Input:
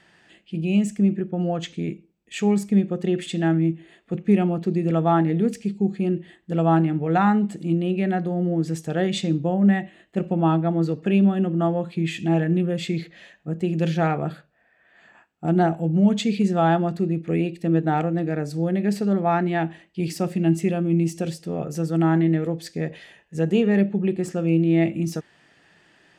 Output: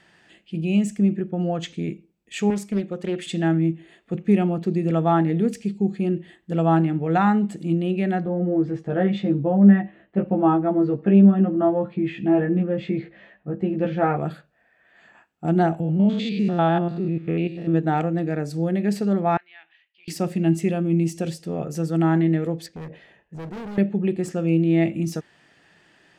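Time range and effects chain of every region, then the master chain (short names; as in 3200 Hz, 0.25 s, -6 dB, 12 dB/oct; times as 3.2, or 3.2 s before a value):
2.5–3.27 low shelf 240 Hz -9.5 dB + Doppler distortion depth 0.39 ms
8.24–14.17 LPF 1700 Hz + doubler 15 ms -2 dB
15.8–17.74 stepped spectrum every 0.1 s + resonant high shelf 5400 Hz -11 dB, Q 1.5
19.37–20.08 compressor 3:1, threshold -25 dBFS + Butterworth band-pass 4200 Hz, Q 0.82 + air absorption 320 m
22.66–23.78 LPF 1200 Hz 6 dB/oct + overloaded stage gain 28.5 dB + compressor 3:1, threshold -34 dBFS
whole clip: dry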